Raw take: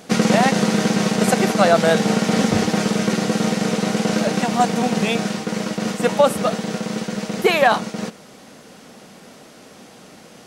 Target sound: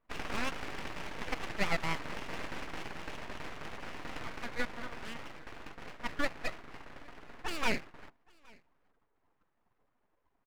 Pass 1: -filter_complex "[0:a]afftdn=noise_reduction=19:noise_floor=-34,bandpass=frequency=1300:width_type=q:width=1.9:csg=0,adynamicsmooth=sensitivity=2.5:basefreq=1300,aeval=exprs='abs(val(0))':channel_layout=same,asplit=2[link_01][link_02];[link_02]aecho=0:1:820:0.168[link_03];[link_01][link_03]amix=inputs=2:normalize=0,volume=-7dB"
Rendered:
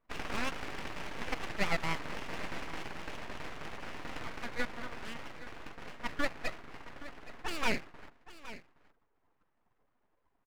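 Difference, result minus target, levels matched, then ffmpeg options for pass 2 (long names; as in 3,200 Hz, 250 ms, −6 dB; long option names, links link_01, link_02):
echo-to-direct +12 dB
-filter_complex "[0:a]afftdn=noise_reduction=19:noise_floor=-34,bandpass=frequency=1300:width_type=q:width=1.9:csg=0,adynamicsmooth=sensitivity=2.5:basefreq=1300,aeval=exprs='abs(val(0))':channel_layout=same,asplit=2[link_01][link_02];[link_02]aecho=0:1:820:0.0422[link_03];[link_01][link_03]amix=inputs=2:normalize=0,volume=-7dB"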